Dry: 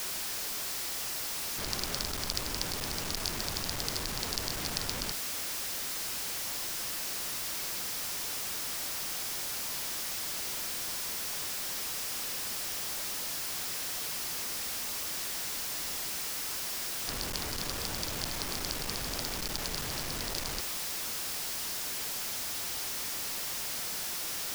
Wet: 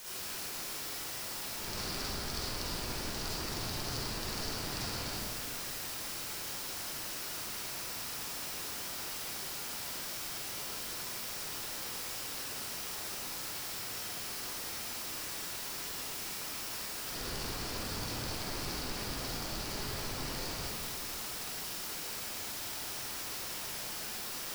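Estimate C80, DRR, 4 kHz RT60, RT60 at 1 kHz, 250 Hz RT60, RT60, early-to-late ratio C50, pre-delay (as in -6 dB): -2.0 dB, -10.0 dB, 1.1 s, 1.8 s, 2.1 s, 1.9 s, -6.5 dB, 38 ms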